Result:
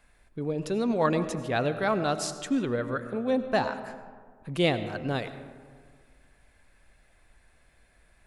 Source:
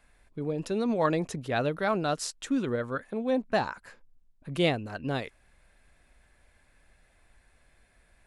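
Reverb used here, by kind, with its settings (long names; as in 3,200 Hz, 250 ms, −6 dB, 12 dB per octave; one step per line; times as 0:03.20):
comb and all-pass reverb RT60 1.8 s, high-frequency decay 0.4×, pre-delay 55 ms, DRR 11 dB
level +1 dB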